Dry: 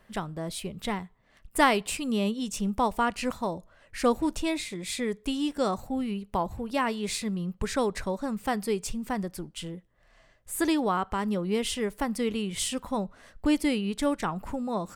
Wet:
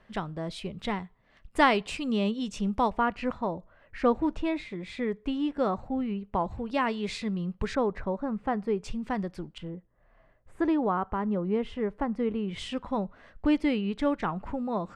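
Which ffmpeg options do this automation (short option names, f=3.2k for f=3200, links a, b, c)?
-af "asetnsamples=n=441:p=0,asendcmd='2.9 lowpass f 2200;6.44 lowpass f 3900;7.75 lowpass f 1500;8.84 lowpass f 3600;9.58 lowpass f 1400;12.48 lowpass f 2800',lowpass=4.4k"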